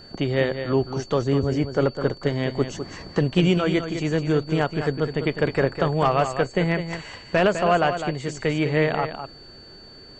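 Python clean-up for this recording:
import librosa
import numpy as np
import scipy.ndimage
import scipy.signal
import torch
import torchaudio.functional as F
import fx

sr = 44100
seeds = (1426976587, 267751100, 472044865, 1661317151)

y = fx.notch(x, sr, hz=4500.0, q=30.0)
y = fx.fix_echo_inverse(y, sr, delay_ms=204, level_db=-9.0)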